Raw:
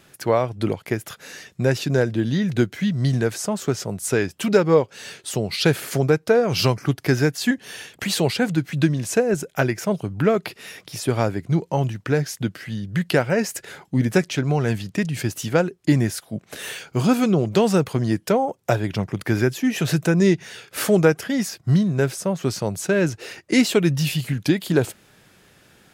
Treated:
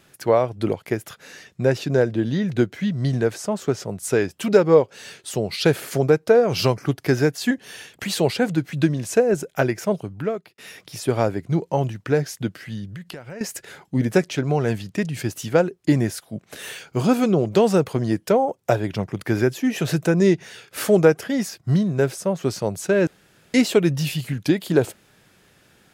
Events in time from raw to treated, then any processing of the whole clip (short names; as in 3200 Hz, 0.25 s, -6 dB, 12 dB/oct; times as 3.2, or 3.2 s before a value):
1.1–4.03 high shelf 6400 Hz -5 dB
9.89–10.58 fade out
12.89–13.41 compressor 8:1, threshold -30 dBFS
23.07–23.54 room tone
whole clip: dynamic EQ 520 Hz, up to +5 dB, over -29 dBFS, Q 0.77; gain -2.5 dB